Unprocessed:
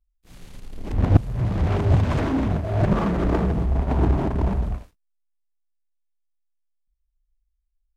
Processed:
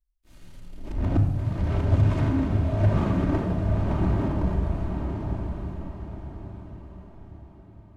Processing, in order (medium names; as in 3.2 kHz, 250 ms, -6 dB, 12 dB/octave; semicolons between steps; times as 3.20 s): on a send: echo that smears into a reverb 923 ms, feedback 42%, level -4.5 dB; on the sum: simulated room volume 2500 m³, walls furnished, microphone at 2.7 m; trim -8.5 dB